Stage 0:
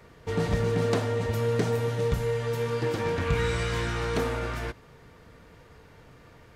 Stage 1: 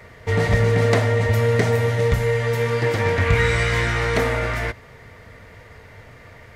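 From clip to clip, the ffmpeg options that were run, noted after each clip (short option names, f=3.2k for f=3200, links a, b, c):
-af "equalizer=f=100:t=o:w=0.33:g=8,equalizer=f=160:t=o:w=0.33:g=-5,equalizer=f=315:t=o:w=0.33:g=-6,equalizer=f=630:t=o:w=0.33:g=5,equalizer=f=2k:t=o:w=0.33:g=11,volume=6.5dB"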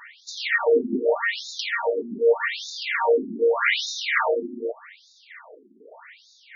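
-af "bass=f=250:g=-6,treble=f=4k:g=3,afftfilt=real='re*between(b*sr/1024,260*pow(5100/260,0.5+0.5*sin(2*PI*0.83*pts/sr))/1.41,260*pow(5100/260,0.5+0.5*sin(2*PI*0.83*pts/sr))*1.41)':imag='im*between(b*sr/1024,260*pow(5100/260,0.5+0.5*sin(2*PI*0.83*pts/sr))/1.41,260*pow(5100/260,0.5+0.5*sin(2*PI*0.83*pts/sr))*1.41)':win_size=1024:overlap=0.75,volume=6.5dB"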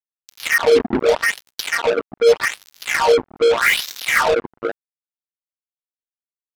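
-af "acrusher=bits=3:mix=0:aa=0.5,volume=5.5dB"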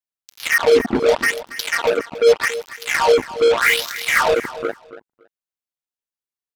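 -af "aecho=1:1:280|560:0.178|0.0302"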